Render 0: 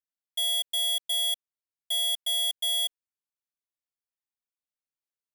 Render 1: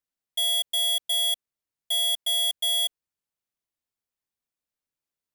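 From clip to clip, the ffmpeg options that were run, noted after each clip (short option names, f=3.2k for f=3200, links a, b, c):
-af "lowshelf=f=460:g=6,volume=2.5dB"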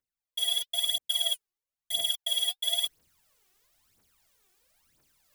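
-af "aphaser=in_gain=1:out_gain=1:delay=2.8:decay=0.73:speed=1:type=triangular,areverse,acompressor=mode=upward:threshold=-40dB:ratio=2.5,areverse,volume=-7.5dB"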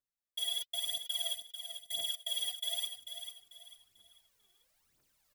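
-af "alimiter=limit=-22.5dB:level=0:latency=1:release=29,aecho=1:1:443|886|1329|1772:0.376|0.124|0.0409|0.0135,volume=-6dB"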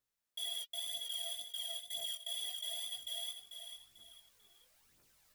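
-af "alimiter=level_in=15dB:limit=-24dB:level=0:latency=1:release=122,volume=-15dB,flanger=delay=17.5:depth=4.9:speed=2,volume=8dB"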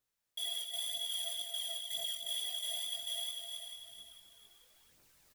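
-af "aecho=1:1:258:0.501,volume=2dB"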